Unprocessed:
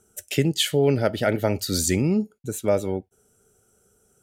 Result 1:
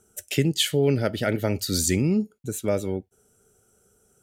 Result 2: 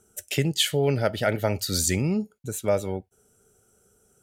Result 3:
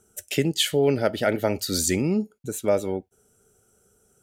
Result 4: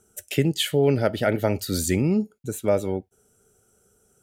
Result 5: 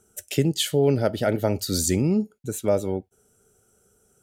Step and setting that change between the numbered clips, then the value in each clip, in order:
dynamic equaliser, frequency: 790, 300, 110, 5,700, 2,100 Hertz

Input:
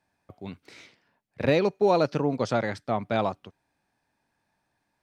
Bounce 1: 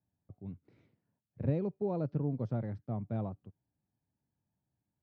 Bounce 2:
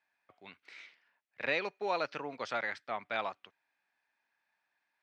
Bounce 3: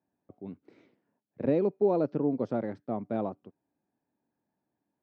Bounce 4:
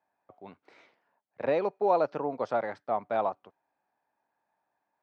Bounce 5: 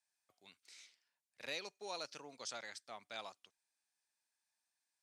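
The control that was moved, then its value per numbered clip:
resonant band-pass, frequency: 110, 2,100, 290, 810, 8,000 Hertz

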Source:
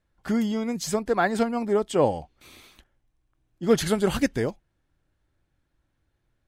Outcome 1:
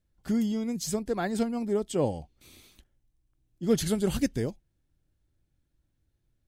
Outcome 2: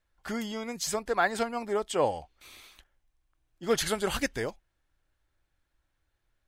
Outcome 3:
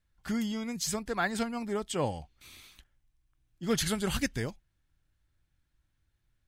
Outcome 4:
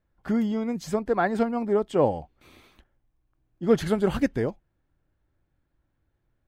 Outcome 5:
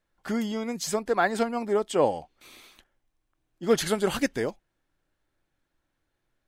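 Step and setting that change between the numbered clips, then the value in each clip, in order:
parametric band, centre frequency: 1,200, 180, 480, 9,000, 70 Hertz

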